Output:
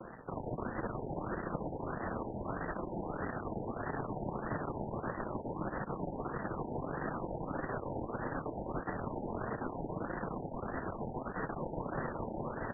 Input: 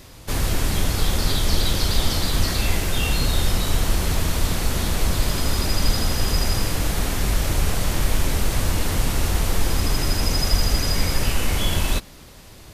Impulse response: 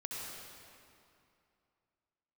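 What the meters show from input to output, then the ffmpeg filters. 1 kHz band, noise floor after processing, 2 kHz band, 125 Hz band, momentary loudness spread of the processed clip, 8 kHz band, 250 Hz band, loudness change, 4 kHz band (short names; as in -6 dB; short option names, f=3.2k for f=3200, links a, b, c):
-8.0 dB, -45 dBFS, -15.0 dB, -19.0 dB, 1 LU, under -40 dB, -10.5 dB, -16.5 dB, under -40 dB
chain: -af "aeval=exprs='max(val(0),0)':c=same,acrusher=bits=4:mode=log:mix=0:aa=0.000001,highpass=230,afreqshift=-50,aecho=1:1:421|842|1263|1684|2105|2526|2947:0.447|0.25|0.14|0.0784|0.0439|0.0246|0.0138,flanger=delay=5.4:depth=4:regen=-56:speed=0.69:shape=triangular,aexciter=amount=15.6:drive=6:freq=5.1k,areverse,acompressor=threshold=-20dB:ratio=16,areverse,afftfilt=real='re*lt(b*sr/1024,930*pow(2000/930,0.5+0.5*sin(2*PI*1.6*pts/sr)))':imag='im*lt(b*sr/1024,930*pow(2000/930,0.5+0.5*sin(2*PI*1.6*pts/sr)))':win_size=1024:overlap=0.75,volume=11dB"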